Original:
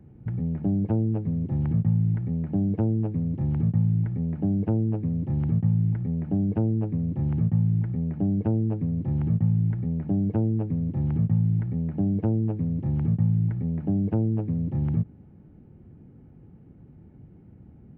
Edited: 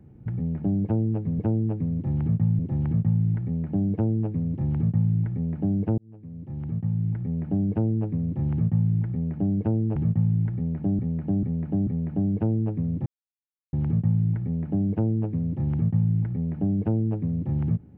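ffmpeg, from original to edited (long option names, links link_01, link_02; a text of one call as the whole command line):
ffmpeg -i in.wav -filter_complex "[0:a]asplit=9[link_01][link_02][link_03][link_04][link_05][link_06][link_07][link_08][link_09];[link_01]atrim=end=1.392[link_10];[link_02]atrim=start=2.728:end=3.932[link_11];[link_03]atrim=start=1.388:end=4.78,asetpts=PTS-STARTPTS,afade=type=out:start_time=3.388:duration=0.004:curve=hsin[link_12];[link_04]atrim=start=4.78:end=8.762,asetpts=PTS-STARTPTS,afade=type=in:duration=1.44[link_13];[link_05]atrim=start=9.208:end=10.242[link_14];[link_06]atrim=start=9.798:end=10.242[link_15];[link_07]atrim=start=9.798:end=10.242[link_16];[link_08]atrim=start=9.798:end=10.99,asetpts=PTS-STARTPTS,afade=type=out:start_time=1.188:duration=0.004:curve=hsin,apad=pad_dur=0.67[link_17];[link_09]atrim=start=10.99,asetpts=PTS-STARTPTS,afade=type=in:duration=0.004:curve=hsin[link_18];[link_10][link_11]acrossfade=duration=0.004:curve1=hsin:curve2=hsin[link_19];[link_12][link_13]concat=n=2:v=0:a=1[link_20];[link_19][link_20]acrossfade=duration=0.004:curve1=hsin:curve2=hsin[link_21];[link_21][link_14]acrossfade=duration=0.004:curve1=hsin:curve2=hsin[link_22];[link_22][link_15]acrossfade=duration=0.004:curve1=hsin:curve2=hsin[link_23];[link_23][link_16]acrossfade=duration=0.004:curve1=hsin:curve2=hsin[link_24];[link_17][link_18]concat=n=2:v=0:a=1[link_25];[link_24][link_25]acrossfade=duration=0.004:curve1=hsin:curve2=hsin" out.wav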